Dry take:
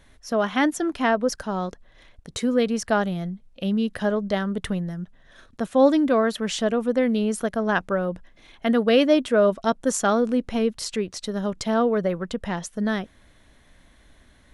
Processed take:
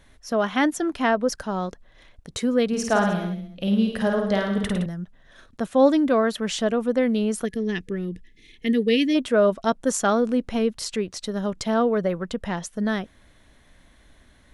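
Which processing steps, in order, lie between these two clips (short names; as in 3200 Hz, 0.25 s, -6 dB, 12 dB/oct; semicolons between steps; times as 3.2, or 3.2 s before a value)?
2.67–4.86 reverse bouncing-ball echo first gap 50 ms, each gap 1.1×, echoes 5; 7.45–9.16 spectral gain 480–1700 Hz -21 dB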